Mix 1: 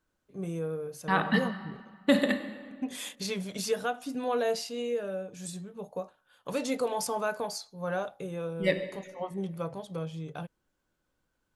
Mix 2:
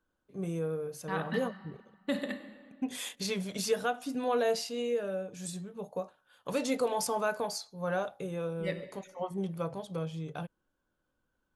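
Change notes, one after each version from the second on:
second voice −9.5 dB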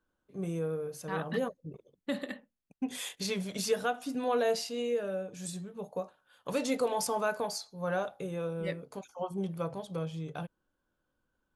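reverb: off

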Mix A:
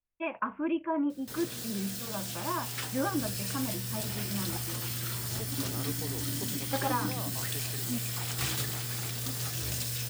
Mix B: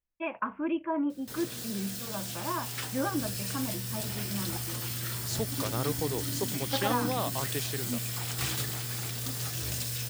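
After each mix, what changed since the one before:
second voice +10.0 dB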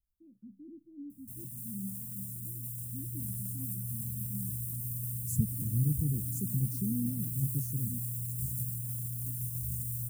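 first voice: add high-pass filter 160 Hz
second voice +10.0 dB
master: add inverse Chebyshev band-stop filter 700–3,100 Hz, stop band 70 dB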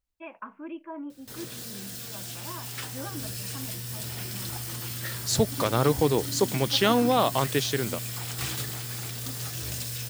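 first voice −8.0 dB
master: remove inverse Chebyshev band-stop filter 700–3,100 Hz, stop band 70 dB

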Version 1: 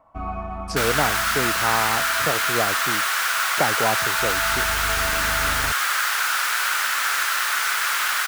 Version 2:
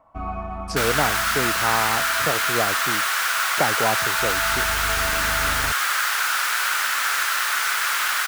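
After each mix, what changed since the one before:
nothing changed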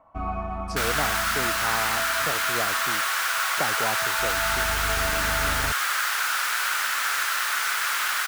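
speech −7.0 dB
second sound −3.0 dB

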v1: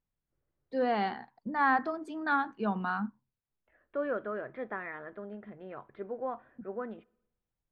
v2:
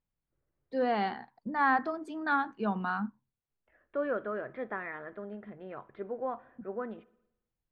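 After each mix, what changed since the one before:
second voice: send +7.0 dB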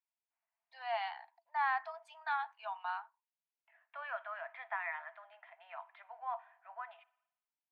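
second voice +5.5 dB
master: add Chebyshev high-pass with heavy ripple 650 Hz, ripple 9 dB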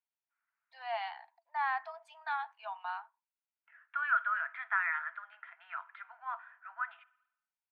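second voice: add high-pass with resonance 1,400 Hz, resonance Q 7.2

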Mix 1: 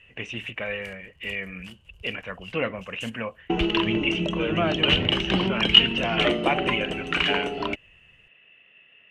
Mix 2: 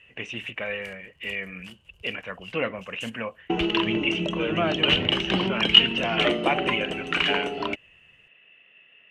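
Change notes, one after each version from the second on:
master: add low-shelf EQ 86 Hz −10.5 dB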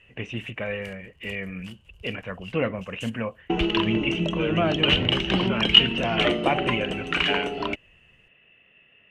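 speech: add spectral tilt −2 dB per octave
master: add low-shelf EQ 86 Hz +10.5 dB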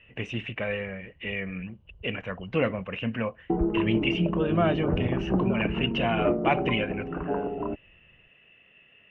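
background: add Bessel low-pass filter 740 Hz, order 8

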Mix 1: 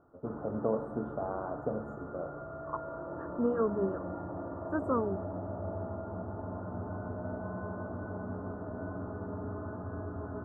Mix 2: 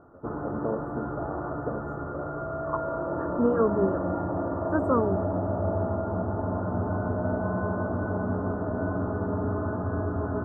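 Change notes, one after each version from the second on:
second voice +6.0 dB
background +10.5 dB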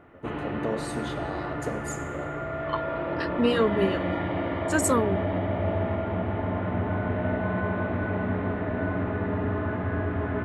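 master: remove elliptic low-pass filter 1,400 Hz, stop band 40 dB

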